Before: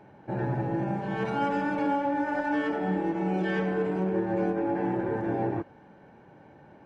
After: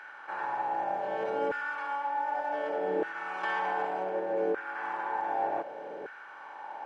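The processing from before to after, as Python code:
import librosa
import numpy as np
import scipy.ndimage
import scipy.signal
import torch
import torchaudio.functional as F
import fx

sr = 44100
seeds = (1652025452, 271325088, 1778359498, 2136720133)

y = fx.bin_compress(x, sr, power=0.6)
y = fx.filter_lfo_highpass(y, sr, shape='saw_down', hz=0.66, low_hz=440.0, high_hz=1500.0, q=3.4)
y = fx.rider(y, sr, range_db=4, speed_s=0.5)
y = fx.dynamic_eq(y, sr, hz=140.0, q=0.97, threshold_db=-43.0, ratio=4.0, max_db=6)
y = fx.env_flatten(y, sr, amount_pct=100, at=(3.43, 3.85))
y = F.gain(torch.from_numpy(y), -8.5).numpy()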